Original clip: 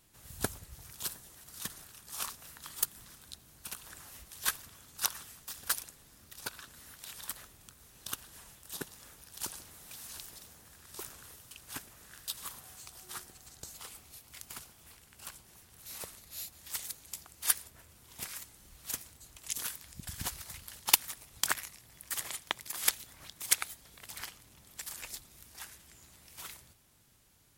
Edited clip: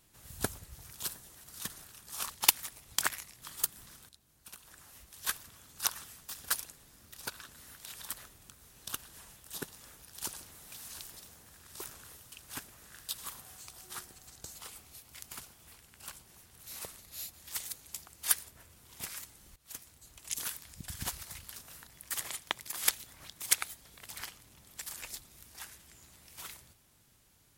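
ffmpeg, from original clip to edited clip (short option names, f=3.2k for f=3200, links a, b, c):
-filter_complex "[0:a]asplit=7[a][b][c][d][e][f][g];[a]atrim=end=2.302[h];[b]atrim=start=20.748:end=21.872[i];[c]atrim=start=2.608:end=3.28,asetpts=PTS-STARTPTS,afade=t=out:st=0.668:d=0.004:c=hsin:silence=0.223872[j];[d]atrim=start=3.28:end=18.75,asetpts=PTS-STARTPTS,afade=t=in:d=1.71:silence=0.223872,afade=t=out:st=15.466:d=0.004:c=hsin:silence=0.125893[k];[e]atrim=start=18.75:end=20.752,asetpts=PTS-STARTPTS,afade=t=in:d=0.9:c=qsin:silence=0.125893[l];[f]atrim=start=2.298:end=2.612[m];[g]atrim=start=21.868[n];[h][i]acrossfade=d=0.004:c1=hsin:c2=hsin[o];[j][k][l]concat=n=3:v=0:a=1[p];[o][p]acrossfade=d=0.004:c1=hsin:c2=hsin[q];[q][m]acrossfade=d=0.004:c1=hsin:c2=hsin[r];[r][n]acrossfade=d=0.004:c1=hsin:c2=hsin"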